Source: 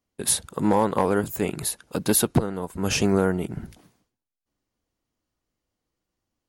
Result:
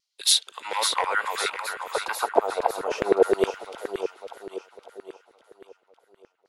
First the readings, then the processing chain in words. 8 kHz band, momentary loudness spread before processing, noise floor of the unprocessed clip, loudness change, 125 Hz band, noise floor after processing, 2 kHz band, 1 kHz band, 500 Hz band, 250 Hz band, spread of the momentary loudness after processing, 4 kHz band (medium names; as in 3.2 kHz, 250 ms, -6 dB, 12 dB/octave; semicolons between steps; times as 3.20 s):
-3.0 dB, 9 LU, -85 dBFS, -1.0 dB, -21.5 dB, -72 dBFS, +4.5 dB, +2.5 dB, +1.0 dB, -10.5 dB, 19 LU, +7.0 dB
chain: treble shelf 2.5 kHz +9 dB; band-stop 1.7 kHz, Q 9.3; LFO band-pass saw down 0.31 Hz 380–4700 Hz; echo whose repeats swap between lows and highs 277 ms, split 1.4 kHz, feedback 69%, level -3 dB; LFO high-pass saw down 9.6 Hz 400–1800 Hz; wow and flutter 27 cents; trim +6 dB